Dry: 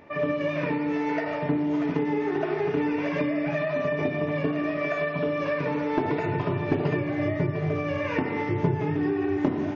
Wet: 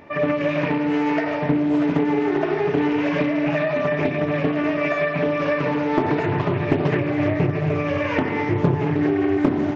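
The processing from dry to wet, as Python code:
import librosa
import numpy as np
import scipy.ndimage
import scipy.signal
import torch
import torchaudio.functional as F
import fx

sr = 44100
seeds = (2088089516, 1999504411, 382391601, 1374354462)

y = fx.peak_eq(x, sr, hz=490.0, db=-3.5, octaves=0.21)
y = y + 10.0 ** (-14.5 / 20.0) * np.pad(y, (int(217 * sr / 1000.0), 0))[:len(y)]
y = fx.doppler_dist(y, sr, depth_ms=0.46)
y = F.gain(torch.from_numpy(y), 5.5).numpy()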